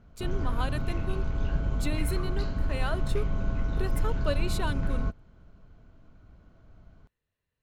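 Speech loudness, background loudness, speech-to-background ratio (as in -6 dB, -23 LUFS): -37.0 LUFS, -32.5 LUFS, -4.5 dB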